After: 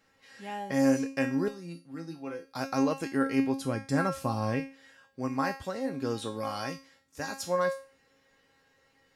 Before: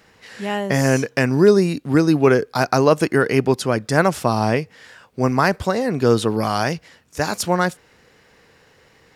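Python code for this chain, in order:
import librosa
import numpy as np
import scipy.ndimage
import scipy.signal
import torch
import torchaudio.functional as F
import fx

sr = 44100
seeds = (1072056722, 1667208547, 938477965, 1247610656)

y = fx.comb_fb(x, sr, f0_hz=170.0, decay_s=0.23, harmonics='all', damping=0.0, mix_pct=90, at=(1.48, 2.45))
y = fx.low_shelf(y, sr, hz=220.0, db=10.5, at=(3.57, 4.6))
y = fx.comb_fb(y, sr, f0_hz=270.0, decay_s=0.37, harmonics='all', damping=0.0, mix_pct=90)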